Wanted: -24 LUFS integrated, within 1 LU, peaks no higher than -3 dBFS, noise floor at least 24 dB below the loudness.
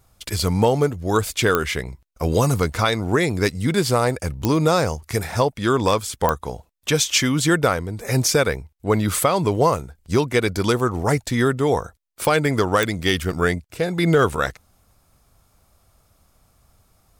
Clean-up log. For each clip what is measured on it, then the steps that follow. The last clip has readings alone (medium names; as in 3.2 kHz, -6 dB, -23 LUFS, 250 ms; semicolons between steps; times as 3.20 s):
clicks found 5; loudness -21.0 LUFS; peak level -2.0 dBFS; loudness target -24.0 LUFS
-> de-click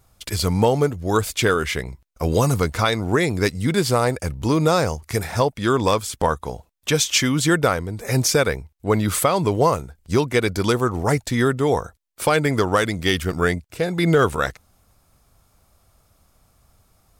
clicks found 0; loudness -21.0 LUFS; peak level -6.5 dBFS; loudness target -24.0 LUFS
-> trim -3 dB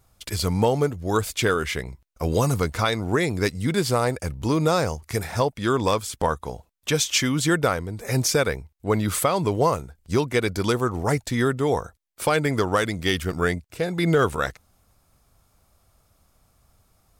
loudness -24.0 LUFS; peak level -9.5 dBFS; noise floor -65 dBFS